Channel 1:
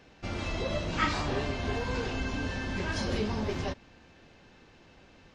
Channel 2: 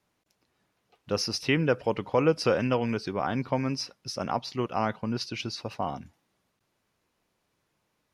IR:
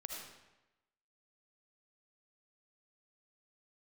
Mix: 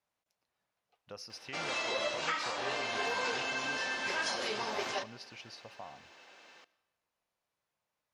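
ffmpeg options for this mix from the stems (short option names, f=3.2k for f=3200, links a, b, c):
-filter_complex "[0:a]highpass=650,highshelf=f=7.7k:g=4.5,alimiter=level_in=2.5dB:limit=-24dB:level=0:latency=1:release=396,volume=-2.5dB,adelay=1300,volume=2.5dB,asplit=2[a][b];[b]volume=-13.5dB[c];[1:a]lowshelf=f=460:t=q:w=1.5:g=-6.5,acompressor=threshold=-37dB:ratio=2,volume=-11.5dB,asplit=2[d][e];[e]volume=-17.5dB[f];[2:a]atrim=start_sample=2205[g];[c][f]amix=inputs=2:normalize=0[h];[h][g]afir=irnorm=-1:irlink=0[i];[a][d][i]amix=inputs=3:normalize=0"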